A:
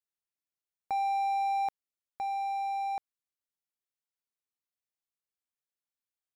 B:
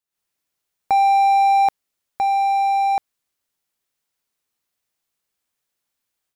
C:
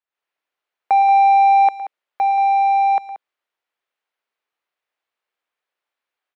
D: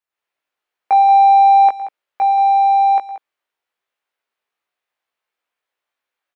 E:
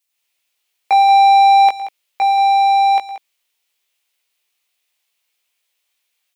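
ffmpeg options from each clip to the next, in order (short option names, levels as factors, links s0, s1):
-af "dynaudnorm=f=100:g=3:m=3.16,volume=1.68"
-filter_complex "[0:a]acrossover=split=370 3300:gain=0.0891 1 0.1[s0][s1][s2];[s0][s1][s2]amix=inputs=3:normalize=0,aecho=1:1:111|180:0.133|0.211,volume=1.33"
-filter_complex "[0:a]asplit=2[s0][s1];[s1]adelay=18,volume=0.668[s2];[s0][s2]amix=inputs=2:normalize=0"
-af "aexciter=amount=6:drive=2.6:freq=2200"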